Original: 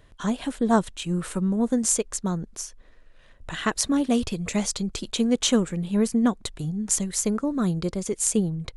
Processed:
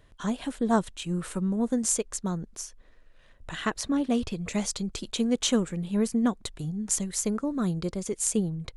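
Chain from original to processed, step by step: 3.68–4.5 high shelf 4800 Hz -> 8500 Hz -9.5 dB; gain -3.5 dB

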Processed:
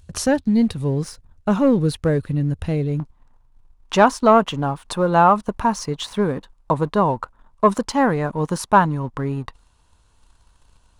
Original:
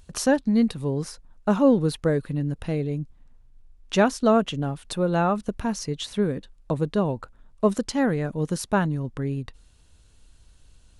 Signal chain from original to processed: sample leveller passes 1; bell 84 Hz +13.5 dB 0.88 oct, from 3 s 990 Hz; gain -1 dB

